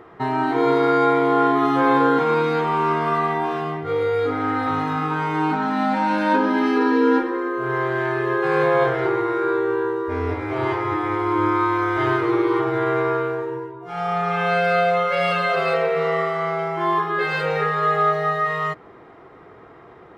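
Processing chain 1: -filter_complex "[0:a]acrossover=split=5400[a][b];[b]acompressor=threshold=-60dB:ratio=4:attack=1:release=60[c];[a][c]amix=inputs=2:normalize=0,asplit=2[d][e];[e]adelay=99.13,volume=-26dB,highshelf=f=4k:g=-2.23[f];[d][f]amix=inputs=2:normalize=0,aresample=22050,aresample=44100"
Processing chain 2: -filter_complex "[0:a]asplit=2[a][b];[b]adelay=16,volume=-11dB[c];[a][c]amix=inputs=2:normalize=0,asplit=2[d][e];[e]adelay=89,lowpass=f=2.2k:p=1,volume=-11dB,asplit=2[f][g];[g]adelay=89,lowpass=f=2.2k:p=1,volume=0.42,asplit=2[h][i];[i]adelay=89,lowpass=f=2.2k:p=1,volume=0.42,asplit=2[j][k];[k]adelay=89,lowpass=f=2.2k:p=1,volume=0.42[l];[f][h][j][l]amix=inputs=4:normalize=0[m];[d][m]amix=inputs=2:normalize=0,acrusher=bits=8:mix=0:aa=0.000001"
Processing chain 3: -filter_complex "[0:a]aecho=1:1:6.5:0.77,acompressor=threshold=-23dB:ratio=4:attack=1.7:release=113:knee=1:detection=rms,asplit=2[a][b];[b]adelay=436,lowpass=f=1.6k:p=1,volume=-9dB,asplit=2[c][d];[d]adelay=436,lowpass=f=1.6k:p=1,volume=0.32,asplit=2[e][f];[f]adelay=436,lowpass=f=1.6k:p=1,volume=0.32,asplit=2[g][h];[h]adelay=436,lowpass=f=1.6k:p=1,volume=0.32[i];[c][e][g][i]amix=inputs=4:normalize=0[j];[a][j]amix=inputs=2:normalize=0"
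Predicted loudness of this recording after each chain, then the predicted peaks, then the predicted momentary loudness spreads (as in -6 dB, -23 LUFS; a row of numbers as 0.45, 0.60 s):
-20.5, -20.5, -26.0 LUFS; -5.5, -6.0, -14.0 dBFS; 7, 7, 3 LU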